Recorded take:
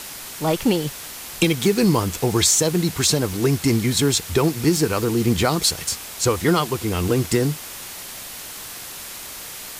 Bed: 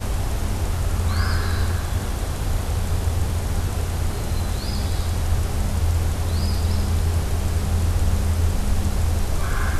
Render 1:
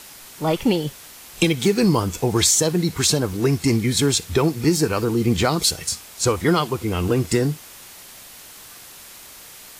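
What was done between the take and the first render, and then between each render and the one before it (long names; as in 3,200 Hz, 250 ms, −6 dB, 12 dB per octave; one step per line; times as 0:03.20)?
noise reduction from a noise print 7 dB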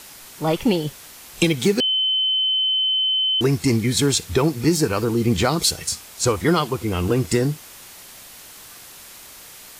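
0:01.80–0:03.41: beep over 3,060 Hz −17 dBFS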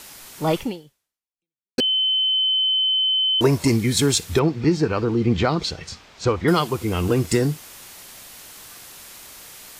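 0:00.58–0:01.78: fade out exponential
0:02.33–0:03.68: hollow resonant body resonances 590/940 Hz, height 14 dB, ringing for 30 ms
0:04.39–0:06.48: high-frequency loss of the air 180 metres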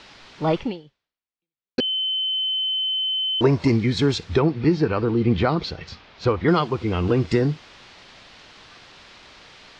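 low-pass filter 4,500 Hz 24 dB per octave
dynamic equaliser 3,300 Hz, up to −4 dB, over −35 dBFS, Q 1.2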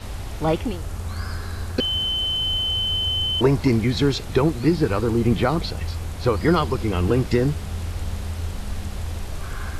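mix in bed −8 dB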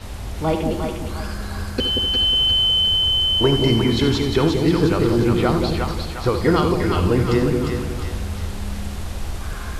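echo with a time of its own for lows and highs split 770 Hz, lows 181 ms, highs 354 ms, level −4 dB
reverb whose tail is shaped and stops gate 110 ms rising, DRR 8 dB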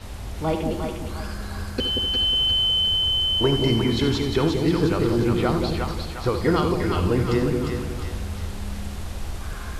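level −3.5 dB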